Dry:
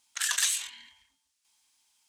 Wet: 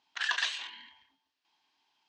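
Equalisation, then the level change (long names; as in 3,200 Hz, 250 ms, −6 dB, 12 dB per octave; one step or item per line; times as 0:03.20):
loudspeaker in its box 190–4,200 Hz, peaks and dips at 220 Hz −7 dB, 540 Hz −7 dB, 1,300 Hz −7 dB, 2,200 Hz −6 dB, 3,600 Hz −3 dB
high-shelf EQ 2,300 Hz −10 dB
+9.0 dB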